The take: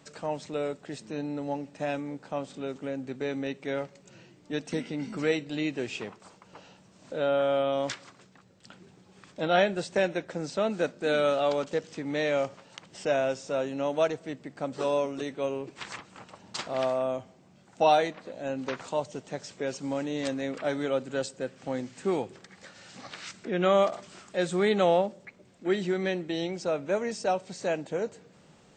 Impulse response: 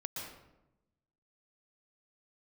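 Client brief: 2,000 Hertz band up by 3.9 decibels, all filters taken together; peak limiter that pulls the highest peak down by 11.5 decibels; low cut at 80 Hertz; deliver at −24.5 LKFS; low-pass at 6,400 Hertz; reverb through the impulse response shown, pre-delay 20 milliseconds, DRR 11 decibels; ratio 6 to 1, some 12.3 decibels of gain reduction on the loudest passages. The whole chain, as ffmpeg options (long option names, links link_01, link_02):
-filter_complex "[0:a]highpass=80,lowpass=6400,equalizer=frequency=2000:width_type=o:gain=5,acompressor=threshold=-30dB:ratio=6,alimiter=level_in=5dB:limit=-24dB:level=0:latency=1,volume=-5dB,asplit=2[link_01][link_02];[1:a]atrim=start_sample=2205,adelay=20[link_03];[link_02][link_03]afir=irnorm=-1:irlink=0,volume=-11dB[link_04];[link_01][link_04]amix=inputs=2:normalize=0,volume=15dB"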